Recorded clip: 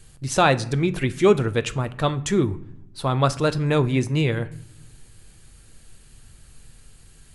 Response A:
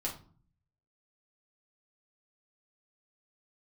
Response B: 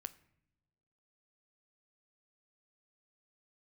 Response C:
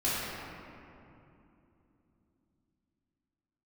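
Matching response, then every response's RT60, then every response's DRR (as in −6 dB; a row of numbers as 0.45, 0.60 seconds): B; non-exponential decay, non-exponential decay, 2.9 s; −3.5, 11.0, −11.5 decibels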